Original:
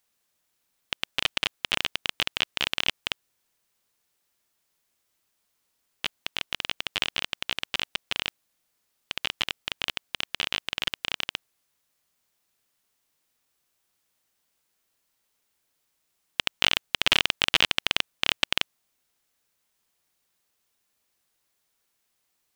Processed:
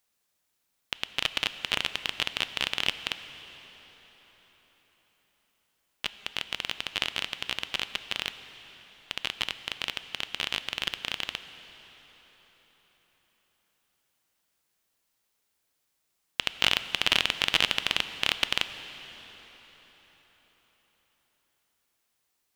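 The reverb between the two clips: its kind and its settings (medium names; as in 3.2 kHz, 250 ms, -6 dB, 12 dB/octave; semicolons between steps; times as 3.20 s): plate-style reverb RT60 5 s, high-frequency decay 0.8×, DRR 11 dB; trim -2 dB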